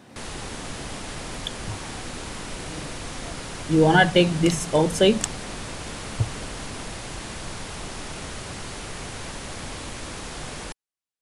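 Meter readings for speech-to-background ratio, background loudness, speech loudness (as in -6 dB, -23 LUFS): 13.5 dB, -34.5 LUFS, -21.0 LUFS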